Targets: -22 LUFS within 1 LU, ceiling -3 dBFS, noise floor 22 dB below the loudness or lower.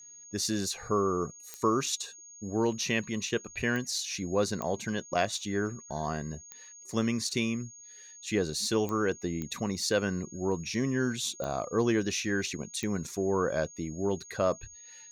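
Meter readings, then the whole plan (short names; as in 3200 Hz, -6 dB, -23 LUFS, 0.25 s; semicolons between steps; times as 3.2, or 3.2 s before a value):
clicks 8; steady tone 6600 Hz; tone level -48 dBFS; loudness -31.0 LUFS; peak -14.0 dBFS; loudness target -22.0 LUFS
-> de-click; notch 6600 Hz, Q 30; gain +9 dB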